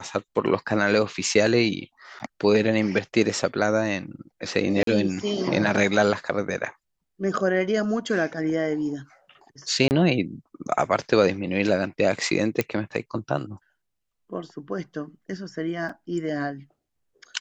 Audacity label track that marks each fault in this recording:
2.190000	2.200000	gap 8.5 ms
4.830000	4.870000	gap 43 ms
9.880000	9.910000	gap 29 ms
12.610000	12.610000	pop -9 dBFS
15.890000	15.890000	gap 4.5 ms

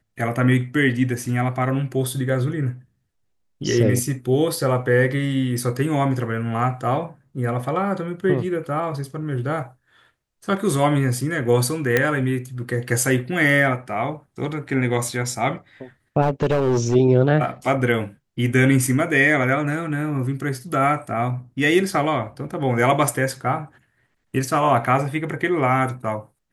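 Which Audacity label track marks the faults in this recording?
11.970000	11.970000	pop -4 dBFS
16.210000	16.960000	clipped -15 dBFS

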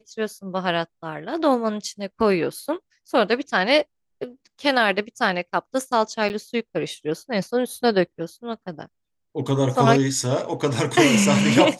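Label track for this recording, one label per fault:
6.290000	6.300000	gap 9.4 ms

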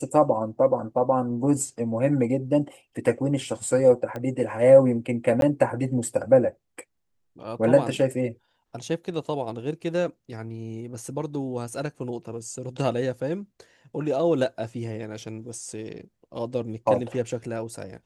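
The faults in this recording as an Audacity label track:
4.160000	4.160000	pop -20 dBFS
5.410000	5.420000	gap 12 ms

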